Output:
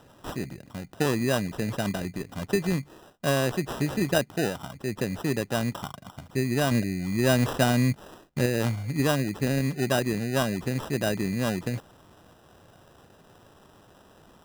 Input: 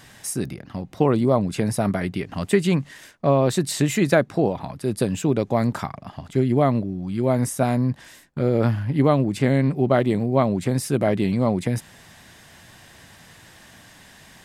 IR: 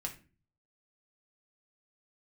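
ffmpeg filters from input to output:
-filter_complex "[0:a]acrusher=samples=20:mix=1:aa=0.000001,asettb=1/sr,asplit=3[link_01][link_02][link_03];[link_01]atrim=end=6.714[link_04];[link_02]atrim=start=6.71:end=8.46,asetpts=PTS-STARTPTS,afade=type=in:duration=0.004:curve=qsin,afade=type=out:start_time=1.746:duration=0.004:curve=qsin,acontrast=38[link_05];[link_03]atrim=start=8.456[link_06];[link_04][link_05]acrossfade=duration=0.004:curve1=hsin:curve2=qsin[link_07];[link_07][link_06]acrossfade=duration=0.004:curve1=qsin:curve2=hsin,volume=-6.5dB"

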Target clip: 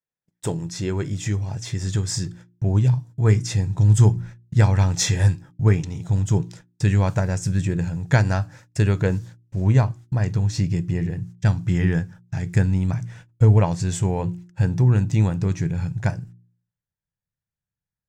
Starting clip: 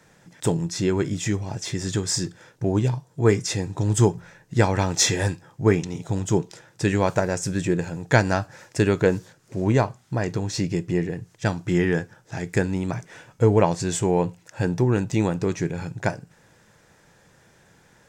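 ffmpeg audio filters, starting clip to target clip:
ffmpeg -i in.wav -af "agate=range=-39dB:threshold=-43dB:ratio=16:detection=peak,bandreject=frequency=58.81:width_type=h:width=4,bandreject=frequency=117.62:width_type=h:width=4,bandreject=frequency=176.43:width_type=h:width=4,bandreject=frequency=235.24:width_type=h:width=4,bandreject=frequency=294.05:width_type=h:width=4,bandreject=frequency=352.86:width_type=h:width=4,asubboost=boost=8:cutoff=130,volume=-3dB" out.wav

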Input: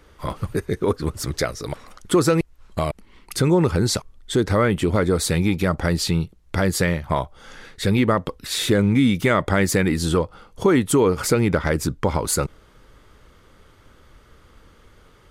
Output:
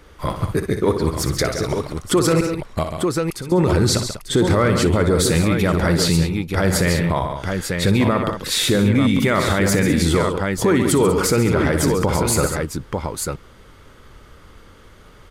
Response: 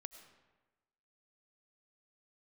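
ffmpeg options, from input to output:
-filter_complex "[0:a]asettb=1/sr,asplit=3[link_01][link_02][link_03];[link_01]atrim=end=2.834[link_04];[link_02]atrim=start=2.83:end=3.52,asetpts=PTS-STARTPTS,afade=type=in:duration=0.004:curve=qsin,afade=type=out:start_time=0.686:duration=0.004:curve=qsin,acompressor=threshold=-42dB:ratio=2.5[link_05];[link_03]atrim=start=3.516[link_06];[link_04][link_05]acrossfade=duration=0.004:curve1=hsin:curve2=qsin[link_07];[link_07][link_06]acrossfade=duration=0.004:curve1=qsin:curve2=hsin,aecho=1:1:60|137|195|894:0.299|0.282|0.2|0.398,alimiter=level_in=11.5dB:limit=-1dB:release=50:level=0:latency=1,volume=-7dB"

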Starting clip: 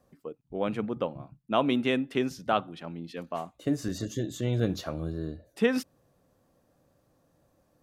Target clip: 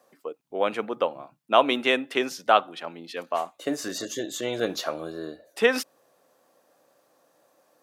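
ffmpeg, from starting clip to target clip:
ffmpeg -i in.wav -af "highpass=500,volume=8.5dB" out.wav

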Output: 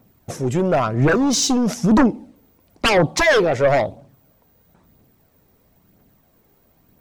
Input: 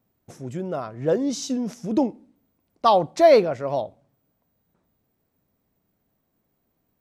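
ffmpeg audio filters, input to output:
ffmpeg -i in.wav -af "acompressor=threshold=-22dB:ratio=2.5,aeval=exprs='0.237*sin(PI/2*3.16*val(0)/0.237)':channel_layout=same,aphaser=in_gain=1:out_gain=1:delay=2.6:decay=0.36:speed=1:type=triangular" out.wav

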